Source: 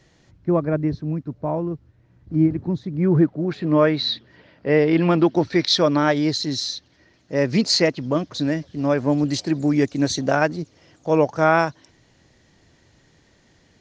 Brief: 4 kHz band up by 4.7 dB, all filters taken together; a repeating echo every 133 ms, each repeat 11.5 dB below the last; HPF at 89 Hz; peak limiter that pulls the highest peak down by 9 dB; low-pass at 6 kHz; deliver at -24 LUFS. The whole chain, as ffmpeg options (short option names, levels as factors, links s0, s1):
-af "highpass=89,lowpass=6000,equalizer=f=4000:t=o:g=6,alimiter=limit=0.299:level=0:latency=1,aecho=1:1:133|266|399:0.266|0.0718|0.0194,volume=0.794"